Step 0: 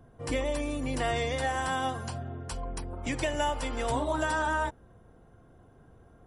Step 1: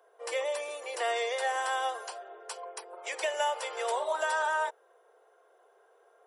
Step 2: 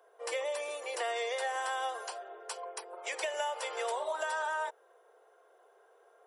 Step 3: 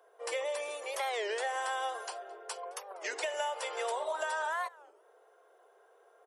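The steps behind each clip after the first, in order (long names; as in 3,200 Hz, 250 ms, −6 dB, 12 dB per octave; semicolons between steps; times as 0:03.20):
Butterworth high-pass 400 Hz 72 dB per octave
downward compressor, threshold −31 dBFS, peak gain reduction 5.5 dB
slap from a distant wall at 37 metres, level −22 dB; wow of a warped record 33 1/3 rpm, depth 250 cents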